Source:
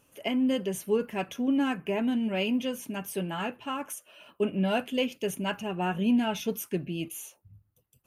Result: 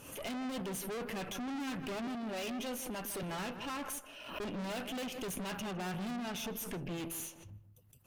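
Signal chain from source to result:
0:02.07–0:03.23: high-pass filter 260 Hz 12 dB per octave
0:06.16–0:06.91: downward compressor, threshold −30 dBFS, peak gain reduction 7.5 dB
tube saturation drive 43 dB, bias 0.65
on a send: feedback echo with a low-pass in the loop 157 ms, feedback 34%, low-pass 1,600 Hz, level −11 dB
on the sum: background raised ahead of every attack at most 66 dB per second
level +5 dB

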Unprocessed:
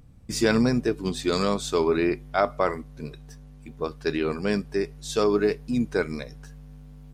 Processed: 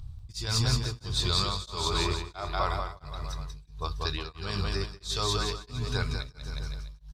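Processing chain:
low shelf with overshoot 140 Hz +12.5 dB, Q 1.5
brickwall limiter −15.5 dBFS, peak gain reduction 11 dB
graphic EQ with 10 bands 250 Hz −10 dB, 500 Hz −8 dB, 1,000 Hz +6 dB, 2,000 Hz −7 dB, 4,000 Hz +12 dB
bouncing-ball delay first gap 190 ms, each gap 0.9×, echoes 5
tremolo along a rectified sine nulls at 1.5 Hz

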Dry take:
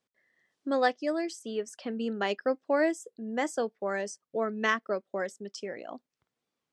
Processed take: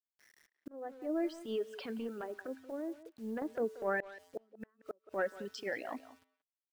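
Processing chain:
reverb reduction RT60 1.5 s
treble cut that deepens with the level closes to 390 Hz, closed at −25.5 dBFS
graphic EQ with 15 bands 160 Hz −7 dB, 1,600 Hz +6 dB, 6,300 Hz −9 dB
0:01.78–0:03.42: downward compressor 16 to 1, threshold −37 dBFS, peak gain reduction 12.5 dB
transient designer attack −10 dB, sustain +2 dB
tuned comb filter 88 Hz, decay 1.2 s, harmonics odd, mix 50%
bit-depth reduction 12 bits, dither none
0:04.00–0:05.15: gate with flip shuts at −38 dBFS, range −37 dB
far-end echo of a speakerphone 180 ms, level −15 dB
0:00.68–0:01.25: fade in
level +8.5 dB

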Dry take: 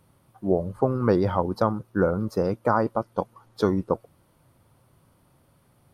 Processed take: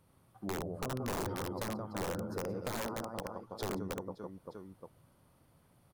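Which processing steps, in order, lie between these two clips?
reverse bouncing-ball delay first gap 70 ms, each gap 1.5×, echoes 5
wrap-around overflow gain 13.5 dB
dynamic equaliser 2,800 Hz, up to −7 dB, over −36 dBFS, Q 0.76
downward compressor 2 to 1, threshold −34 dBFS, peak gain reduction 9 dB
level −7 dB

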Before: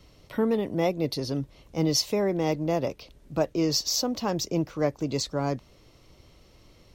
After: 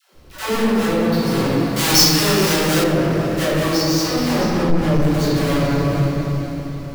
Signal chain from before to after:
each half-wave held at its own peak
feedback delay with all-pass diffusion 452 ms, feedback 46%, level −12.5 dB
0:00.85–0:01.25: output level in coarse steps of 15 dB
0:04.39–0:04.89: spectral tilt −2.5 dB per octave
all-pass dispersion lows, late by 144 ms, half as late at 490 Hz
convolution reverb RT60 2.6 s, pre-delay 5 ms, DRR −10 dB
soft clipping −3 dBFS, distortion −15 dB
speech leveller within 4 dB 0.5 s
0:01.76–0:02.84: high-shelf EQ 2,300 Hz +11.5 dB
level −4.5 dB

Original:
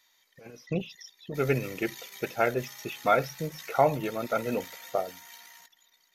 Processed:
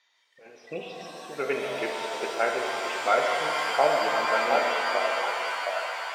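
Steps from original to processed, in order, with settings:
band-pass filter 420–4,100 Hz
echo through a band-pass that steps 716 ms, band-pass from 700 Hz, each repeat 0.7 octaves, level −3 dB
reverb with rising layers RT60 2.9 s, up +7 semitones, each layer −2 dB, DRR 1.5 dB

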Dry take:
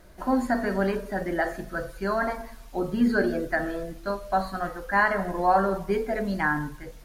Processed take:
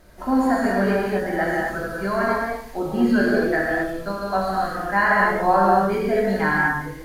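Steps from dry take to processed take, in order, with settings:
reverb whose tail is shaped and stops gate 290 ms flat, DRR −4.5 dB

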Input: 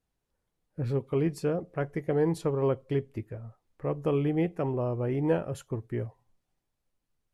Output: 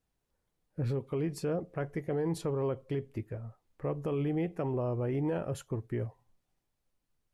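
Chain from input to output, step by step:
brickwall limiter −25 dBFS, peak gain reduction 9.5 dB

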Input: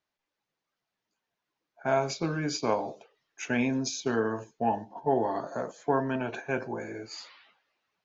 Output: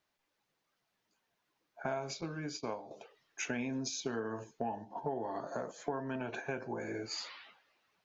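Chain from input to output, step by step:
downward compressor 5 to 1, threshold −40 dBFS, peak gain reduction 17.5 dB
0:02.21–0:02.91: downward expander −38 dBFS
level +4 dB

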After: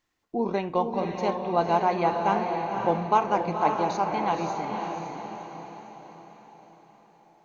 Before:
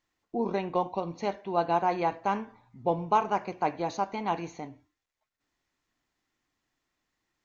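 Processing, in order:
feedback delay with all-pass diffusion 526 ms, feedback 49%, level −4 dB
level +2.5 dB

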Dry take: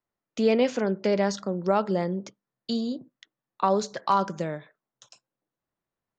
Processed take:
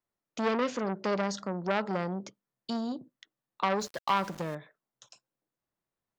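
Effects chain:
0:03.80–0:04.55: centre clipping without the shift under −40.5 dBFS
saturating transformer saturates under 1,400 Hz
level −2.5 dB

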